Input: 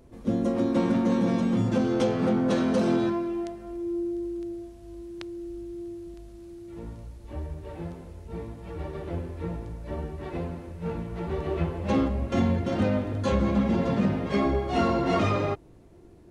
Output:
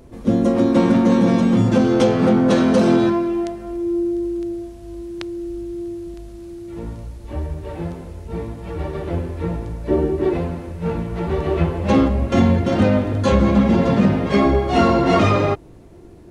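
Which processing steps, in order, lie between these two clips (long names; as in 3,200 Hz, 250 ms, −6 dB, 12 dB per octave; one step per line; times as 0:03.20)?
0:09.88–0:10.34: parametric band 350 Hz +14.5 dB 0.86 octaves
level +9 dB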